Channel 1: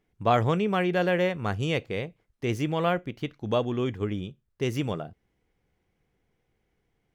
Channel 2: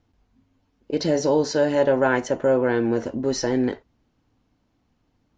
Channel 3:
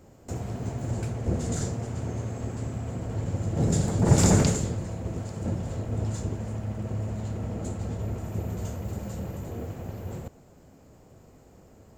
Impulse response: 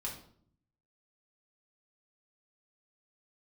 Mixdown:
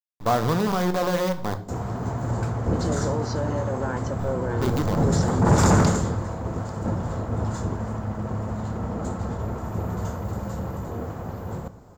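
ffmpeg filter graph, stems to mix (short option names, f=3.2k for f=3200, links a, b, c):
-filter_complex "[0:a]equalizer=f=5.1k:w=0.47:g=-12.5,acrusher=bits=5:dc=4:mix=0:aa=0.000001,volume=-1.5dB,asplit=3[a][b][c];[a]atrim=end=1.56,asetpts=PTS-STARTPTS,afade=t=out:st=1.556:d=0.004:c=hsin[d];[b]atrim=start=1.56:end=4.19,asetpts=PTS-STARTPTS,volume=0[e];[c]atrim=start=4.19,asetpts=PTS-STARTPTS,afade=t=in:d=0.004:c=hsin[f];[d][e][f]concat=n=3:v=0:a=1,asplit=2[g][h];[h]volume=-4dB[i];[1:a]alimiter=limit=-20dB:level=0:latency=1:release=220,adelay=1800,volume=-1.5dB[j];[2:a]adynamicequalizer=threshold=0.00316:dfrequency=1300:dqfactor=0.81:tfrequency=1300:tqfactor=0.81:attack=5:release=100:ratio=0.375:range=4:mode=boostabove:tftype=bell,adelay=1400,volume=2dB,asplit=2[k][l];[l]volume=-11.5dB[m];[3:a]atrim=start_sample=2205[n];[i][m]amix=inputs=2:normalize=0[o];[o][n]afir=irnorm=-1:irlink=0[p];[g][j][k][p]amix=inputs=4:normalize=0,equalizer=f=1k:t=o:w=0.67:g=4,equalizer=f=2.5k:t=o:w=0.67:g=-8,equalizer=f=10k:t=o:w=0.67:g=-10,asoftclip=type=tanh:threshold=-10dB"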